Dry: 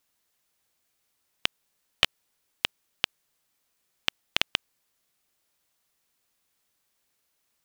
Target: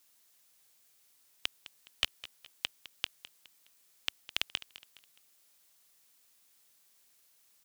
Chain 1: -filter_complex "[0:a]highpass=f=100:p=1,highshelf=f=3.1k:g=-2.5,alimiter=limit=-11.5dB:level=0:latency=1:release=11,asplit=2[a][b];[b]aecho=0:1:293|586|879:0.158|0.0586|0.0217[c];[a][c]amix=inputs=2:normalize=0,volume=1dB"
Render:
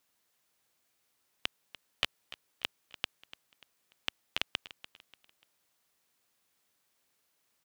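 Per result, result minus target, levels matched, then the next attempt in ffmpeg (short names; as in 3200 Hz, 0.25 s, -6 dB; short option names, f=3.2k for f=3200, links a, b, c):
echo 85 ms late; 8000 Hz band -4.5 dB
-filter_complex "[0:a]highpass=f=100:p=1,highshelf=f=3.1k:g=-2.5,alimiter=limit=-11.5dB:level=0:latency=1:release=11,asplit=2[a][b];[b]aecho=0:1:208|416|624:0.158|0.0586|0.0217[c];[a][c]amix=inputs=2:normalize=0,volume=1dB"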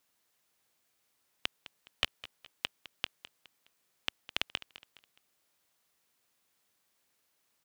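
8000 Hz band -4.5 dB
-filter_complex "[0:a]highpass=f=100:p=1,highshelf=f=3.1k:g=8.5,alimiter=limit=-11.5dB:level=0:latency=1:release=11,asplit=2[a][b];[b]aecho=0:1:208|416|624:0.158|0.0586|0.0217[c];[a][c]amix=inputs=2:normalize=0,volume=1dB"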